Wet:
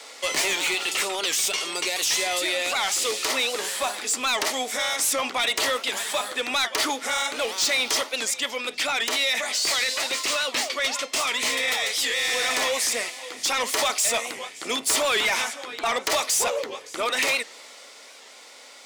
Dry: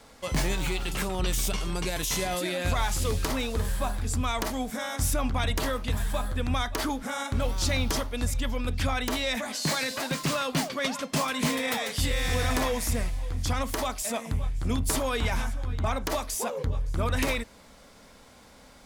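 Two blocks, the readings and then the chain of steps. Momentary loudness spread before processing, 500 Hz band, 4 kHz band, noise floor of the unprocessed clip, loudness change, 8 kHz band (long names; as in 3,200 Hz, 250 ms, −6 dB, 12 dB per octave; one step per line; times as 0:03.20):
4 LU, +3.0 dB, +9.5 dB, −53 dBFS, +5.5 dB, +9.0 dB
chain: high-pass filter 360 Hz 24 dB per octave
flat-topped bell 3,700 Hz +8 dB 2.8 octaves
notch filter 1,600 Hz, Q 7.2
in parallel at −3 dB: brickwall limiter −17.5 dBFS, peak gain reduction 7.5 dB
on the sum: speech leveller 2 s
soft clipping −17.5 dBFS, distortion −13 dB
wow of a warped record 78 rpm, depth 160 cents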